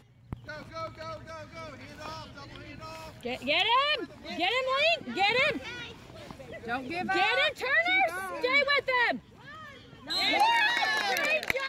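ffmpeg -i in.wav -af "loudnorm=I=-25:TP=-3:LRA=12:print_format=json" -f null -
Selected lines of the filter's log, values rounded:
"input_i" : "-26.2",
"input_tp" : "-9.7",
"input_lra" : "4.4",
"input_thresh" : "-38.2",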